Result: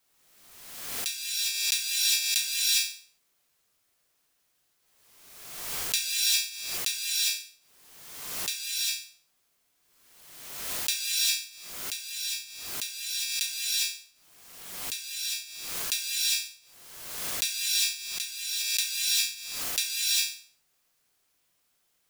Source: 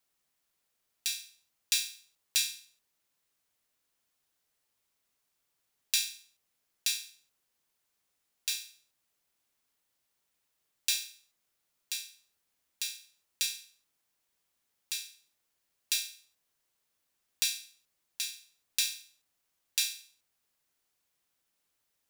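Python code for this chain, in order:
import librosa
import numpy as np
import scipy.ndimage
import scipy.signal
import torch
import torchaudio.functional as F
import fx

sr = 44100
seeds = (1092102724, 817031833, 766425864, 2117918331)

y = fx.rev_gated(x, sr, seeds[0], gate_ms=430, shape='rising', drr_db=-6.5)
y = fx.pre_swell(y, sr, db_per_s=42.0)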